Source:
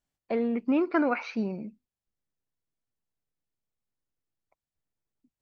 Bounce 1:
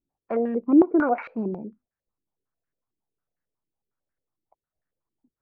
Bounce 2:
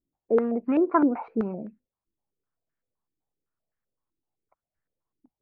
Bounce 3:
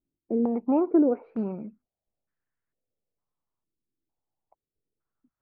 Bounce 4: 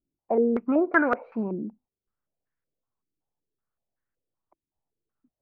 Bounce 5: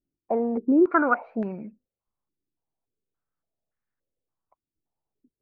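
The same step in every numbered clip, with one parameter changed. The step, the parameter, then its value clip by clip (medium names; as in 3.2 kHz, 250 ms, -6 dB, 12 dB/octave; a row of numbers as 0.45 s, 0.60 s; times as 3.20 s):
step-sequenced low-pass, rate: 11 Hz, 7.8 Hz, 2.2 Hz, 5.3 Hz, 3.5 Hz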